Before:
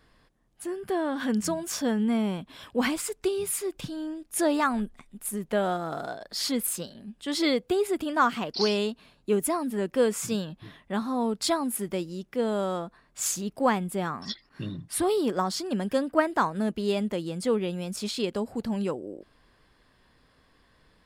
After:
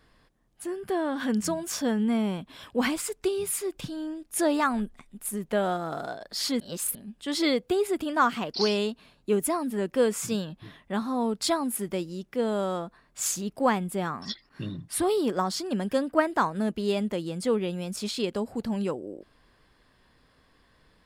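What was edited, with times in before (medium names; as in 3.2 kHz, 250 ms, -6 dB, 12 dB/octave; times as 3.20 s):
6.60–6.95 s: reverse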